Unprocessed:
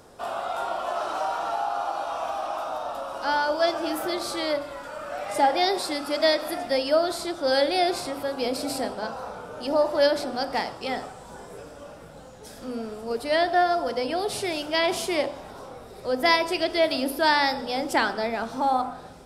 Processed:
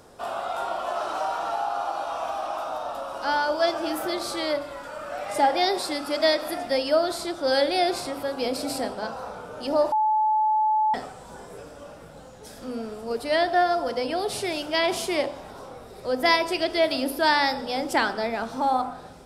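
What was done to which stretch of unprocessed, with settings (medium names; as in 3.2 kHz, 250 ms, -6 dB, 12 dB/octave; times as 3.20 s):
9.92–10.94 s: bleep 863 Hz -18.5 dBFS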